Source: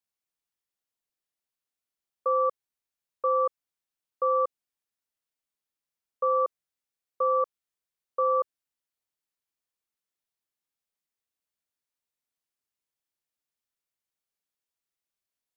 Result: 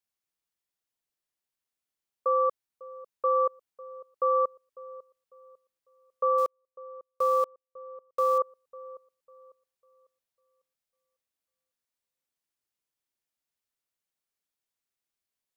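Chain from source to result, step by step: 6.38–8.38 sample gate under -39 dBFS; dark delay 0.549 s, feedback 30%, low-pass 880 Hz, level -17 dB

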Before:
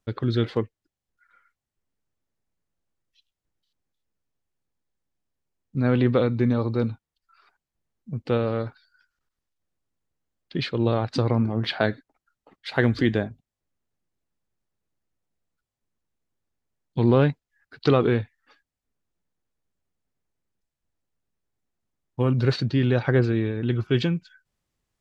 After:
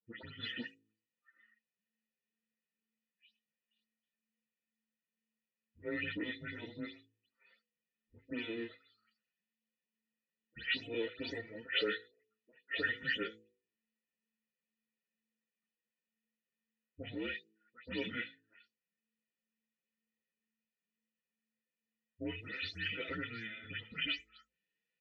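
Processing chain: spectral delay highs late, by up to 0.201 s; Butterworth band-stop 1000 Hz, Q 3.7; comb 1.9 ms, depth 89%; limiter -14.5 dBFS, peak gain reduction 8.5 dB; frequency shift -220 Hz; vowel filter e; bell 2900 Hz +9.5 dB 2.1 oct; de-hum 54.14 Hz, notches 9; endless flanger 6.6 ms +2.1 Hz; gain +4 dB

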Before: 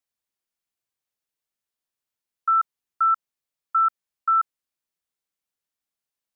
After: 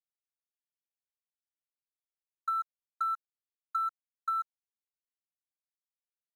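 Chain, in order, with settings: Wiener smoothing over 9 samples; HPF 1400 Hz 24 dB/oct; comb 6.7 ms, depth 86%; compressor 6:1, threshold -24 dBFS, peak gain reduction 7.5 dB; requantised 12-bit, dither none; gain -5.5 dB

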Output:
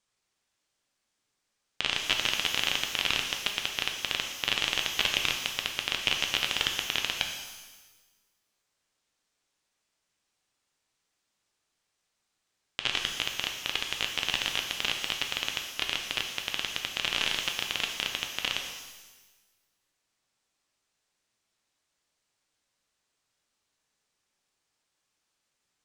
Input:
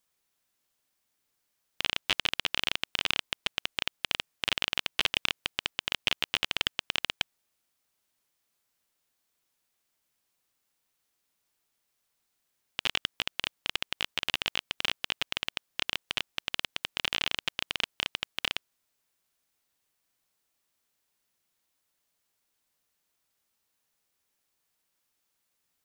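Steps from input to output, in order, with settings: LPF 8500 Hz 24 dB/oct; shimmer reverb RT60 1.2 s, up +12 st, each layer -8 dB, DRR 2.5 dB

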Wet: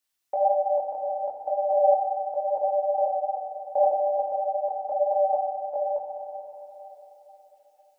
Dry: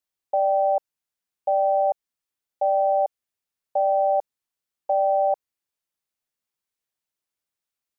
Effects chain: reverse delay 0.426 s, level -2.5 dB; chorus voices 6, 1.1 Hz, delay 21 ms, depth 3.7 ms; diffused feedback echo 0.493 s, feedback 43%, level -15 dB; FDN reverb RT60 2.1 s, low-frequency decay 1.5×, high-frequency decay 0.8×, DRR 1.5 dB; mismatched tape noise reduction encoder only

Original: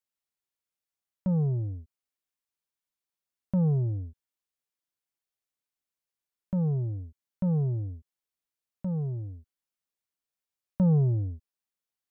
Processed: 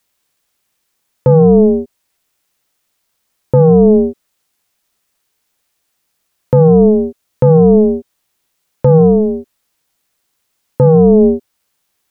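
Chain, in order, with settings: ring modulator 320 Hz; maximiser +27.5 dB; gain -1 dB

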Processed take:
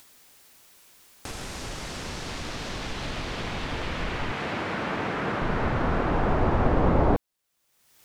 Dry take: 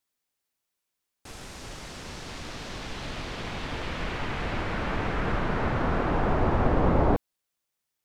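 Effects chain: 4.32–5.42 HPF 150 Hz 12 dB/oct; in parallel at +1 dB: upward compressor, threshold -25 dBFS; on the sum: gain -5.5 dB

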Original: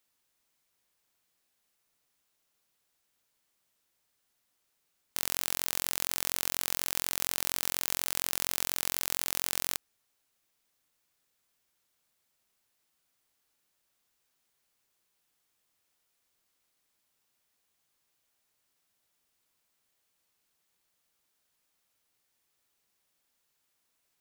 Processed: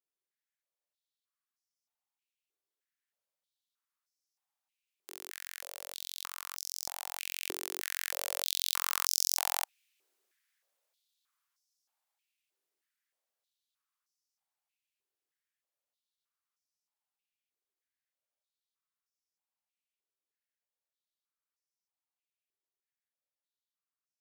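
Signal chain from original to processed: Doppler pass-by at 9.27, 5 m/s, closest 4.2 m; stepped high-pass 3.2 Hz 380–5400 Hz

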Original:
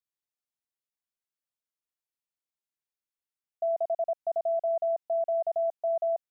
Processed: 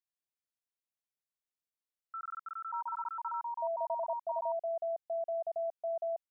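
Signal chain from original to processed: echoes that change speed 0.164 s, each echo +6 st, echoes 2; gain -7.5 dB

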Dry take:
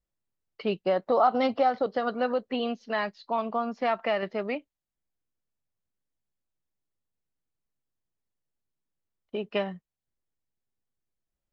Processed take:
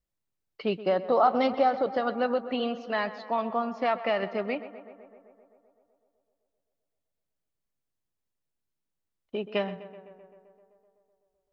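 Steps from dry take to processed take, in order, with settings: tape echo 0.128 s, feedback 77%, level -13.5 dB, low-pass 2700 Hz

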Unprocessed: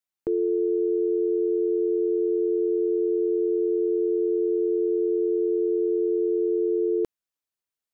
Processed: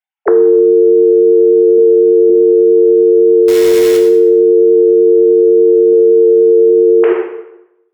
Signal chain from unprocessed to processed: sine-wave speech; 1.78–2.3 HPF 200 Hz 12 dB/oct; 3.48–3.97 companded quantiser 4-bit; 5.92–6.69 comb 3.9 ms, depth 46%; plate-style reverb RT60 0.84 s, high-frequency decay 0.85×, pre-delay 0 ms, DRR 0 dB; maximiser +22.5 dB; gain -1 dB

